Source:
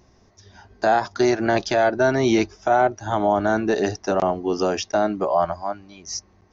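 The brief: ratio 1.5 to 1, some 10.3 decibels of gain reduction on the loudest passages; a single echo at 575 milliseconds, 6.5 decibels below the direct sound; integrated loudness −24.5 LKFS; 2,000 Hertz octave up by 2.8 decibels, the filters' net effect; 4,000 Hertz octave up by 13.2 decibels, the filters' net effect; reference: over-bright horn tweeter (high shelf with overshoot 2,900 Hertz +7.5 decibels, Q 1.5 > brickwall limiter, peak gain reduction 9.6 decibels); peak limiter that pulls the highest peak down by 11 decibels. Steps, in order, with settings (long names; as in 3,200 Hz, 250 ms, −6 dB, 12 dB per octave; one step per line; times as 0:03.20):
parametric band 2,000 Hz +5 dB
parametric band 4,000 Hz +5 dB
downward compressor 1.5 to 1, threshold −43 dBFS
brickwall limiter −23.5 dBFS
high shelf with overshoot 2,900 Hz +7.5 dB, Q 1.5
single-tap delay 575 ms −6.5 dB
level +10 dB
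brickwall limiter −14 dBFS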